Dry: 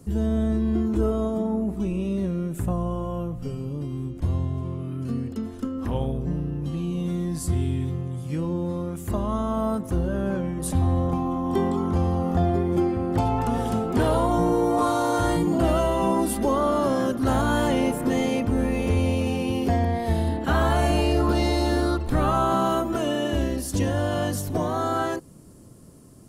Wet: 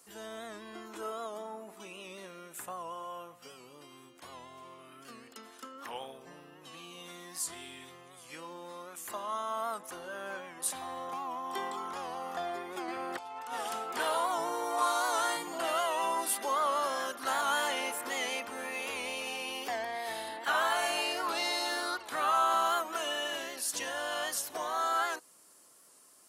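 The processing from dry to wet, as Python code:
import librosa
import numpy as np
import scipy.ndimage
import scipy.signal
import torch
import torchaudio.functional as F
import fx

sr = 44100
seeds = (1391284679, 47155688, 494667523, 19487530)

y = scipy.signal.sosfilt(scipy.signal.butter(2, 1100.0, 'highpass', fs=sr, output='sos'), x)
y = fx.over_compress(y, sr, threshold_db=-38.0, ratio=-0.5, at=(12.88, 13.54))
y = fx.record_warp(y, sr, rpm=78.0, depth_cents=100.0)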